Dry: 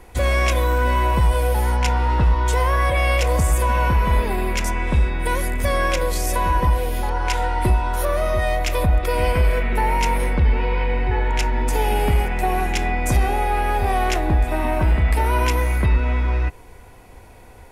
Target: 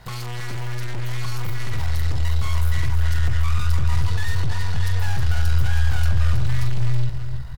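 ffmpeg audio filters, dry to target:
-filter_complex "[0:a]asplit=2[s0][s1];[s1]adelay=31,volume=0.316[s2];[s0][s2]amix=inputs=2:normalize=0,asplit=2[s3][s4];[s4]aecho=0:1:98:0.282[s5];[s3][s5]amix=inputs=2:normalize=0,aeval=exprs='(tanh(31.6*val(0)+0.55)-tanh(0.55))/31.6':c=same,asetrate=103194,aresample=44100,asubboost=boost=10:cutoff=99,asplit=2[s6][s7];[s7]aecho=0:1:321|642:0.376|0.0564[s8];[s6][s8]amix=inputs=2:normalize=0,asetrate=37084,aresample=44100,atempo=1.18921"

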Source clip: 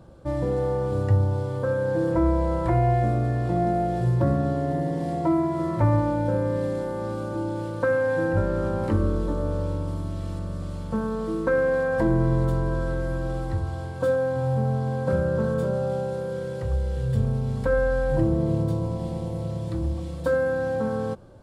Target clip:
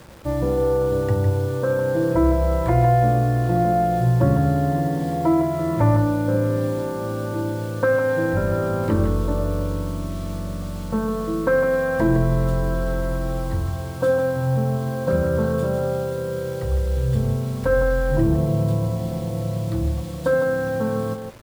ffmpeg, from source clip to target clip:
-af "bandreject=f=50:t=h:w=6,bandreject=f=100:t=h:w=6,acrusher=bits=7:mix=0:aa=0.000001,aecho=1:1:156:0.398,volume=1.5"

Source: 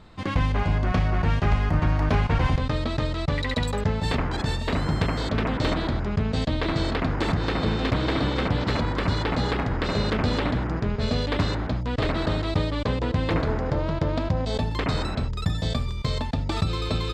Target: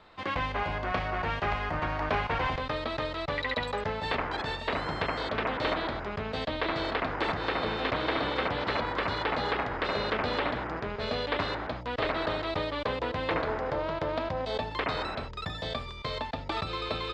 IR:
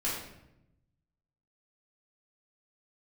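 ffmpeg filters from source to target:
-filter_complex "[0:a]acrossover=split=400 4700:gain=0.178 1 0.2[s0][s1][s2];[s0][s1][s2]amix=inputs=3:normalize=0,acrossover=split=4700[s3][s4];[s4]acompressor=threshold=0.00282:ratio=4:attack=1:release=60[s5];[s3][s5]amix=inputs=2:normalize=0"

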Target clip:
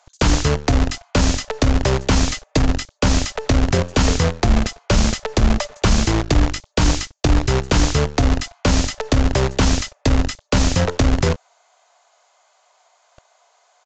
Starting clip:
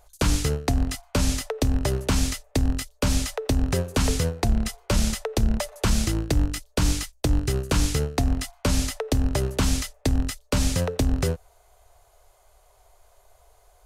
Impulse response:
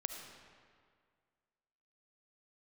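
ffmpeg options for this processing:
-filter_complex "[0:a]asettb=1/sr,asplit=3[s0][s1][s2];[s0]atrim=end=2.274[s3];[s1]atrim=start=2.27:end=2.69,asetpts=PTS-STARTPTS,afade=t=in:d=0.004:c=qsin,afade=t=out:st=0.416:d=0.004:c=qsin,aecho=1:1:6.4:0.54,atrim=end_sample=18522[s4];[s2]atrim=start=2.686[s5];[s3][s4]acrossfade=d=0.004:c1=hsin:c2=qsin[s6];[s6][s5]acrossfade=d=0.004:c1=qsin:c2=hsin,acrossover=split=630|2600[s7][s8][s9];[s7]acrusher=bits=5:dc=4:mix=0:aa=0.000001[s10];[s10][s8][s9]amix=inputs=3:normalize=0,aresample=16000,aresample=44100,volume=2"

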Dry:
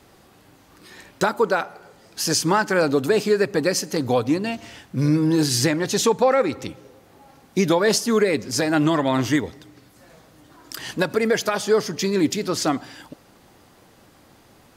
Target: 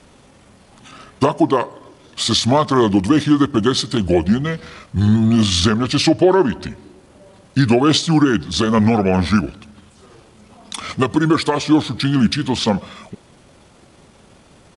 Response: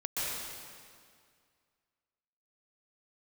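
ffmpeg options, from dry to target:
-af "asetrate=31183,aresample=44100,atempo=1.41421,volume=1.78"

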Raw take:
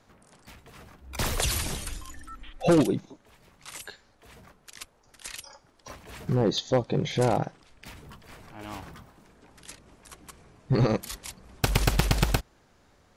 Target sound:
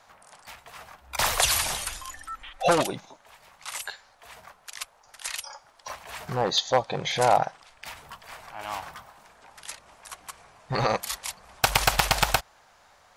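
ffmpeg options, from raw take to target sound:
-af "lowshelf=f=500:t=q:w=1.5:g=-13,volume=2"

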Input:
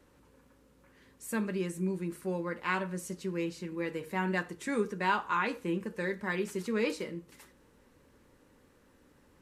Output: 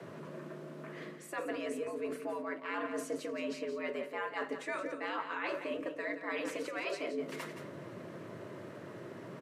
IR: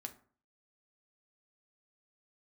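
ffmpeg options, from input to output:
-af "lowpass=f=1900:p=1,afftfilt=real='re*lt(hypot(re,im),0.141)':imag='im*lt(hypot(re,im),0.141)':win_size=1024:overlap=0.75,adynamicequalizer=threshold=0.00141:dfrequency=150:dqfactor=1.1:tfrequency=150:tqfactor=1.1:attack=5:release=100:ratio=0.375:range=1.5:mode=cutabove:tftype=bell,areverse,acompressor=threshold=0.00282:ratio=16,areverse,afreqshift=96,aecho=1:1:172:0.335,volume=6.68"

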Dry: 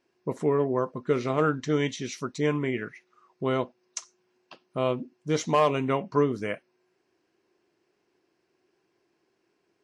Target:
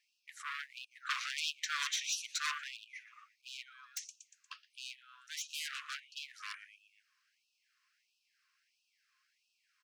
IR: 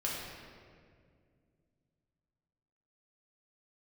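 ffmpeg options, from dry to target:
-filter_complex "[0:a]asplit=5[s0][s1][s2][s3][s4];[s1]adelay=118,afreqshift=120,volume=0.112[s5];[s2]adelay=236,afreqshift=240,volume=0.055[s6];[s3]adelay=354,afreqshift=360,volume=0.0269[s7];[s4]adelay=472,afreqshift=480,volume=0.0132[s8];[s0][s5][s6][s7][s8]amix=inputs=5:normalize=0,aeval=exprs='0.0422*(abs(mod(val(0)/0.0422+3,4)-2)-1)':c=same,acompressor=threshold=0.0141:ratio=4,asoftclip=type=tanh:threshold=0.02,asettb=1/sr,asplit=3[s9][s10][s11];[s9]atrim=end=0.914[s12];[s10]atrim=start=0.91:end=2.64,asetpts=PTS-STARTPTS,afade=t=in:d=0.004:c=qsin,afade=t=out:st=1.726:d=0.004:c=qsin,acontrast=66[s13];[s11]atrim=start=2.636[s14];[s12][s13]acrossfade=d=0.004:c1=hsin:c2=qsin[s15];[s15][s14]acrossfade=d=0.004:c1=qsin:c2=hsin,afftfilt=real='re*gte(b*sr/1024,990*pow(2500/990,0.5+0.5*sin(2*PI*1.5*pts/sr)))':imag='im*gte(b*sr/1024,990*pow(2500/990,0.5+0.5*sin(2*PI*1.5*pts/sr)))':win_size=1024:overlap=0.75,volume=1.33"

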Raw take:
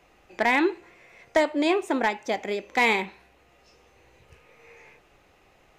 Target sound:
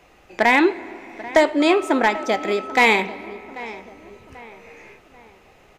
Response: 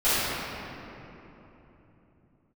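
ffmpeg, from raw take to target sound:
-filter_complex "[0:a]asettb=1/sr,asplit=3[s0][s1][s2];[s0]atrim=end=1.604[s3];[s1]atrim=start=1.6:end=2.84,asetpts=PTS-STARTPTS,afade=t=in:d=0.004:c=qsin,afade=t=out:st=1.236:d=0.004:c=qsin,aeval=exprs='val(0)+0.0112*sin(2*PI*1300*n/s)':c=same[s4];[s2]atrim=start=2.836[s5];[s3][s4]acrossfade=d=0.004:c1=hsin:c2=qsin[s6];[s6][s5]acrossfade=d=0.004:c1=qsin:c2=hsin,asplit=2[s7][s8];[s8]adelay=789,lowpass=f=2600:p=1,volume=0.141,asplit=2[s9][s10];[s10]adelay=789,lowpass=f=2600:p=1,volume=0.44,asplit=2[s11][s12];[s12]adelay=789,lowpass=f=2600:p=1,volume=0.44,asplit=2[s13][s14];[s14]adelay=789,lowpass=f=2600:p=1,volume=0.44[s15];[s7][s9][s11][s13][s15]amix=inputs=5:normalize=0,asplit=2[s16][s17];[1:a]atrim=start_sample=2205[s18];[s17][s18]afir=irnorm=-1:irlink=0,volume=0.0178[s19];[s16][s19]amix=inputs=2:normalize=0,volume=2"

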